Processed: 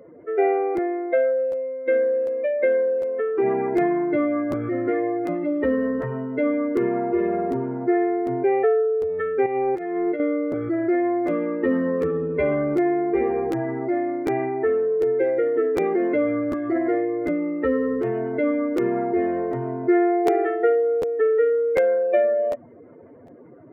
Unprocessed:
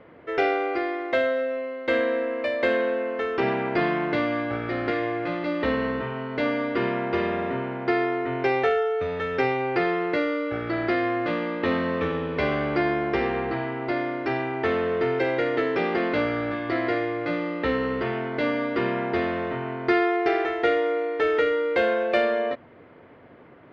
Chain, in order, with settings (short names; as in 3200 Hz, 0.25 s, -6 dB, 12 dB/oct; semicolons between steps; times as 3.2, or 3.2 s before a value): spectral contrast raised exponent 2.2; 9.46–10.2 negative-ratio compressor -27 dBFS, ratio -0.5; crackling interface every 0.75 s, samples 512, repeat, from 0.76; gain +3.5 dB